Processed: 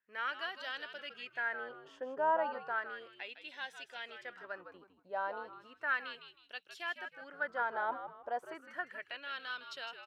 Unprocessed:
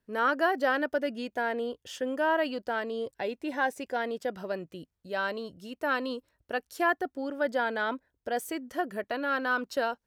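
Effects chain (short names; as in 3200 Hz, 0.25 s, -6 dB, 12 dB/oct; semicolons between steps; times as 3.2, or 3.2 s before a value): frequency-shifting echo 0.158 s, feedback 33%, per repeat -95 Hz, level -9 dB; LFO band-pass sine 0.34 Hz 840–3500 Hz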